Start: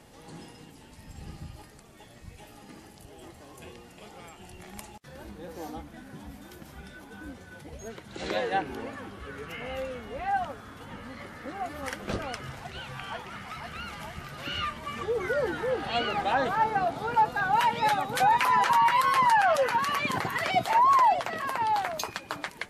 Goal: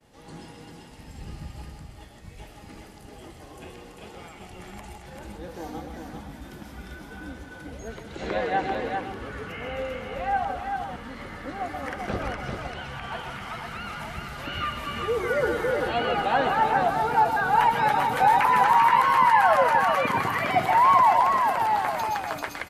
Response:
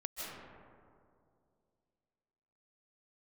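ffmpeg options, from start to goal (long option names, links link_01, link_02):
-filter_complex "[0:a]agate=range=-33dB:threshold=-48dB:ratio=3:detection=peak,aecho=1:1:158|392:0.266|0.562[link_01];[1:a]atrim=start_sample=2205,atrim=end_sample=6615,asetrate=48510,aresample=44100[link_02];[link_01][link_02]afir=irnorm=-1:irlink=0,acrossover=split=2500[link_03][link_04];[link_04]acompressor=threshold=-52dB:ratio=4:attack=1:release=60[link_05];[link_03][link_05]amix=inputs=2:normalize=0,asetnsamples=nb_out_samples=441:pad=0,asendcmd='13.12 highshelf g 2;14.53 highshelf g 9.5',highshelf=frequency=8000:gain=-5.5,volume=7.5dB"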